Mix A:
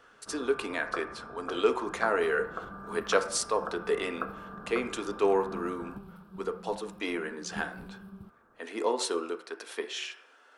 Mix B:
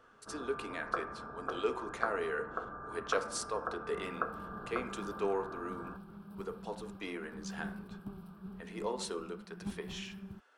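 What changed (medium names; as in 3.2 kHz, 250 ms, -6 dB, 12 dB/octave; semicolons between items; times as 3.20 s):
speech -8.5 dB; second sound: entry +2.10 s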